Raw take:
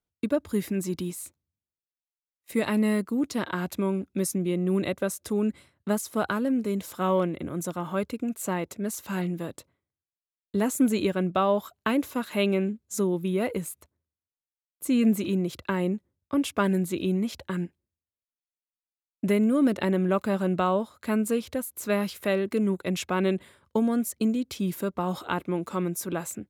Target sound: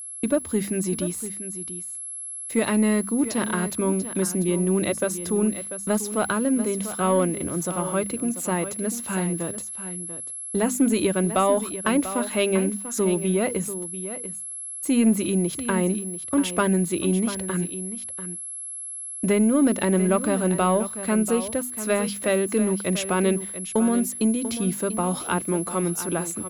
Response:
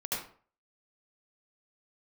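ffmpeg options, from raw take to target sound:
-filter_complex "[0:a]agate=range=0.0224:threshold=0.00631:ratio=3:detection=peak,highshelf=f=9900:g=-5,bandreject=f=50:t=h:w=6,bandreject=f=100:t=h:w=6,bandreject=f=150:t=h:w=6,bandreject=f=200:t=h:w=6,bandreject=f=250:t=h:w=6,asplit=2[s0][s1];[s1]asoftclip=type=tanh:threshold=0.1,volume=0.631[s2];[s0][s2]amix=inputs=2:normalize=0,aeval=exprs='val(0)+0.02*sin(2*PI*11000*n/s)':c=same,aeval=exprs='val(0)*gte(abs(val(0)),0.00631)':c=same,aecho=1:1:691:0.251"

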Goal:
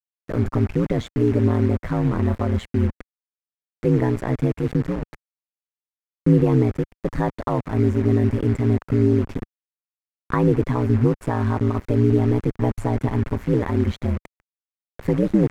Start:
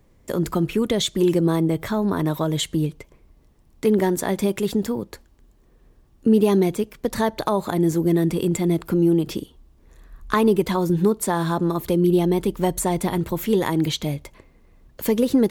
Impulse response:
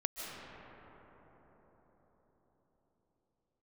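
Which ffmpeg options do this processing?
-af "acrusher=bits=4:mix=0:aa=0.000001,highshelf=f=2600:t=q:w=1.5:g=-6.5,areverse,acompressor=mode=upward:threshold=0.0224:ratio=2.5,areverse,aeval=exprs='val(0)*sin(2*PI*60*n/s)':c=same,aemphasis=mode=reproduction:type=bsi,volume=0.841"

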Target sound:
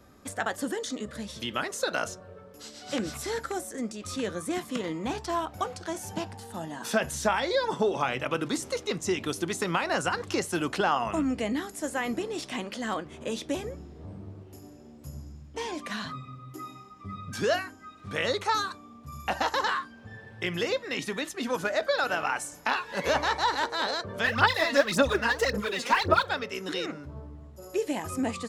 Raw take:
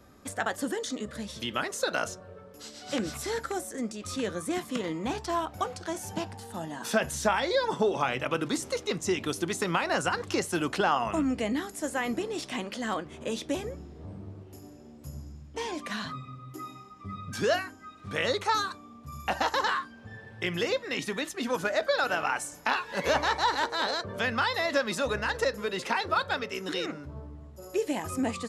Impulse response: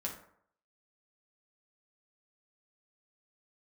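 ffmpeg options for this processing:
-filter_complex "[0:a]asplit=3[s0][s1][s2];[s0]afade=t=out:st=24.23:d=0.02[s3];[s1]aphaser=in_gain=1:out_gain=1:delay=4.3:decay=0.74:speed=1.8:type=sinusoidal,afade=t=in:st=24.23:d=0.02,afade=t=out:st=26.28:d=0.02[s4];[s2]afade=t=in:st=26.28:d=0.02[s5];[s3][s4][s5]amix=inputs=3:normalize=0"

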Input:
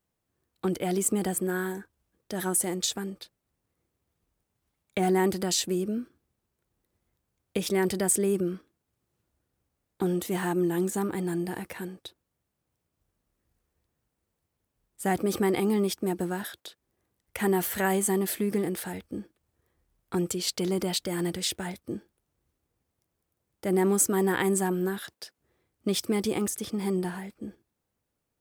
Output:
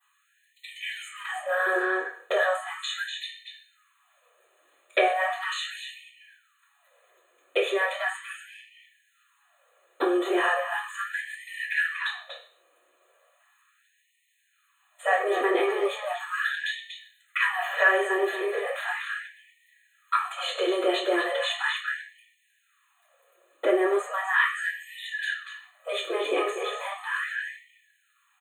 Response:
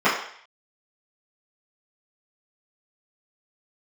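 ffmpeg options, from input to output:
-filter_complex "[0:a]asuperstop=centerf=5200:order=8:qfactor=2.2,highshelf=f=8400:g=10.5,asplit=2[s0][s1];[s1]adelay=240,highpass=300,lowpass=3400,asoftclip=type=hard:threshold=0.0794,volume=0.398[s2];[s0][s2]amix=inputs=2:normalize=0,acompressor=threshold=0.0112:ratio=4,aecho=1:1:1.7:0.62,acrossover=split=4000[s3][s4];[s4]acompressor=threshold=0.00141:ratio=4:attack=1:release=60[s5];[s3][s5]amix=inputs=2:normalize=0[s6];[1:a]atrim=start_sample=2205,asetrate=57330,aresample=44100[s7];[s6][s7]afir=irnorm=-1:irlink=0,afftfilt=real='re*gte(b*sr/1024,290*pow(1800/290,0.5+0.5*sin(2*PI*0.37*pts/sr)))':imag='im*gte(b*sr/1024,290*pow(1800/290,0.5+0.5*sin(2*PI*0.37*pts/sr)))':win_size=1024:overlap=0.75,volume=1.19"

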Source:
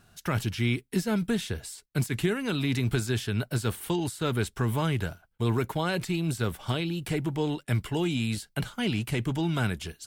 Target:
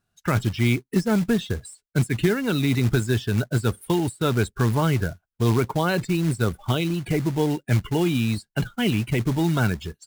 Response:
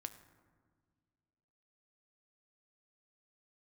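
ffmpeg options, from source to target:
-af "afftdn=nr=23:nf=-37,acrusher=bits=4:mode=log:mix=0:aa=0.000001,adynamicequalizer=threshold=0.00224:dfrequency=2900:dqfactor=3:tfrequency=2900:tqfactor=3:attack=5:release=100:ratio=0.375:range=2:mode=cutabove:tftype=bell,volume=2"

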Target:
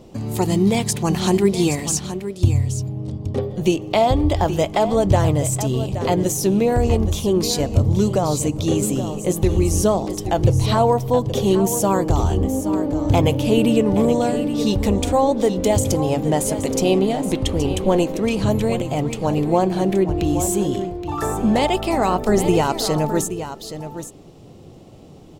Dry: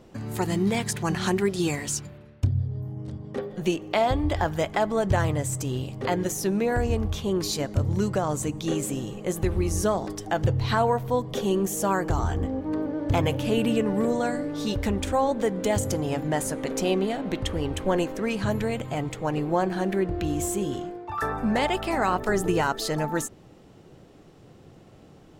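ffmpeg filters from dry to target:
-af "equalizer=f=1600:w=1.7:g=-11.5,aecho=1:1:823:0.282,volume=2.37"

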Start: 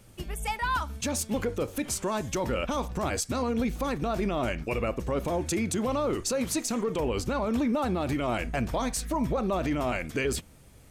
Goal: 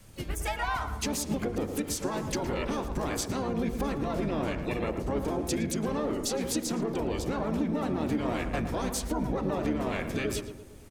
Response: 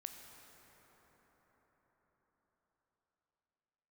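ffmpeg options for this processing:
-filter_complex "[0:a]adynamicequalizer=threshold=0.00631:dfrequency=310:dqfactor=3:tfrequency=310:tqfactor=3:attack=5:release=100:ratio=0.375:range=3:mode=boostabove:tftype=bell,bandreject=f=82.02:t=h:w=4,bandreject=f=164.04:t=h:w=4,bandreject=f=246.06:t=h:w=4,bandreject=f=328.08:t=h:w=4,bandreject=f=410.1:t=h:w=4,bandreject=f=492.12:t=h:w=4,bandreject=f=574.14:t=h:w=4,bandreject=f=656.16:t=h:w=4,bandreject=f=738.18:t=h:w=4,bandreject=f=820.2:t=h:w=4,bandreject=f=902.22:t=h:w=4,bandreject=f=984.24:t=h:w=4,bandreject=f=1066.26:t=h:w=4,bandreject=f=1148.28:t=h:w=4,bandreject=f=1230.3:t=h:w=4,bandreject=f=1312.32:t=h:w=4,bandreject=f=1394.34:t=h:w=4,bandreject=f=1476.36:t=h:w=4,acompressor=threshold=0.0316:ratio=4,asplit=3[s0][s1][s2];[s1]asetrate=33038,aresample=44100,atempo=1.33484,volume=0.631[s3];[s2]asetrate=66075,aresample=44100,atempo=0.66742,volume=0.316[s4];[s0][s3][s4]amix=inputs=3:normalize=0,asplit=2[s5][s6];[s6]adelay=113,lowpass=f=1600:p=1,volume=0.422,asplit=2[s7][s8];[s8]adelay=113,lowpass=f=1600:p=1,volume=0.54,asplit=2[s9][s10];[s10]adelay=113,lowpass=f=1600:p=1,volume=0.54,asplit=2[s11][s12];[s12]adelay=113,lowpass=f=1600:p=1,volume=0.54,asplit=2[s13][s14];[s14]adelay=113,lowpass=f=1600:p=1,volume=0.54,asplit=2[s15][s16];[s16]adelay=113,lowpass=f=1600:p=1,volume=0.54,asplit=2[s17][s18];[s18]adelay=113,lowpass=f=1600:p=1,volume=0.54[s19];[s5][s7][s9][s11][s13][s15][s17][s19]amix=inputs=8:normalize=0"

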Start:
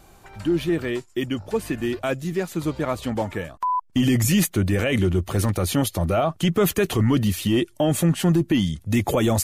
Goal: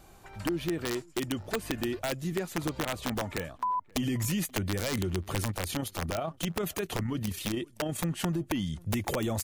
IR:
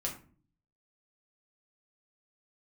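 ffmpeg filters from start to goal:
-filter_complex "[0:a]acompressor=threshold=0.0708:ratio=8,aeval=exprs='(mod(7.94*val(0)+1,2)-1)/7.94':c=same,asplit=2[s0][s1];[s1]adelay=530.6,volume=0.0501,highshelf=f=4000:g=-11.9[s2];[s0][s2]amix=inputs=2:normalize=0,asettb=1/sr,asplit=3[s3][s4][s5];[s3]atrim=end=5.514[s6];[s4]atrim=start=5.51:end=8.04,asetpts=PTS-STARTPTS,afade=t=in:d=0.004:c=qsin,afade=t=out:st=2.526:d=0.004:c=qsin,tremolo=f=31:d=0.4[s7];[s5]atrim=start=8.036[s8];[s6][s7]acrossfade=d=0.004:c1=hsin:c2=qsin[s9];[s9][s8]acrossfade=d=0.004:c1=qsin:c2=hsin,volume=0.631"

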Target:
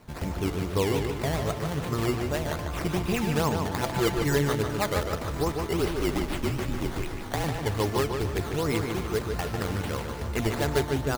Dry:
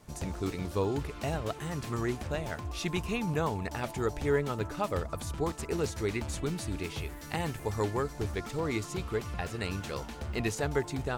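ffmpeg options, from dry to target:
-filter_complex "[0:a]acrusher=samples=12:mix=1:aa=0.000001:lfo=1:lforange=12:lforate=2.5,asettb=1/sr,asplit=3[s0][s1][s2];[s0]atrim=end=3.814[s3];[s1]atrim=start=3.81:end=4.35,asetpts=PTS-STARTPTS,afade=t=in:d=0.004:c=qsin,afade=t=out:st=0.536:d=0.004:c=qsin,aecho=1:1:5.9:0.86,atrim=end_sample=23814[s4];[s2]atrim=start=4.346[s5];[s3][s4]acrossfade=d=0.004:c1=hsin:c2=qsin[s6];[s6][s5]acrossfade=d=0.004:c1=qsin:c2=hsin,asplit=2[s7][s8];[s8]aecho=0:1:1041:0.126[s9];[s7][s9]amix=inputs=2:normalize=0,asettb=1/sr,asplit=3[s10][s11][s12];[s10]atrim=end=5.794[s13];[s11]atrim=start=5.79:end=7.44,asetpts=PTS-STARTPTS,afade=t=in:d=0.004:c=qsin,afade=t=out:st=1.646:d=0.004:c=qsin,afreqshift=-48[s14];[s12]atrim=start=7.436[s15];[s13][s14]acrossfade=d=0.004:c1=hsin:c2=qsin[s16];[s16][s15]acrossfade=d=0.004:c1=qsin:c2=hsin,asplit=2[s17][s18];[s18]adelay=148,lowpass=f=4600:p=1,volume=0.562,asplit=2[s19][s20];[s20]adelay=148,lowpass=f=4600:p=1,volume=0.46,asplit=2[s21][s22];[s22]adelay=148,lowpass=f=4600:p=1,volume=0.46,asplit=2[s23][s24];[s24]adelay=148,lowpass=f=4600:p=1,volume=0.46,asplit=2[s25][s26];[s26]adelay=148,lowpass=f=4600:p=1,volume=0.46,asplit=2[s27][s28];[s28]adelay=148,lowpass=f=4600:p=1,volume=0.46[s29];[s19][s21][s23][s25][s27][s29]amix=inputs=6:normalize=0[s30];[s17][s30]amix=inputs=2:normalize=0,volume=1.58"

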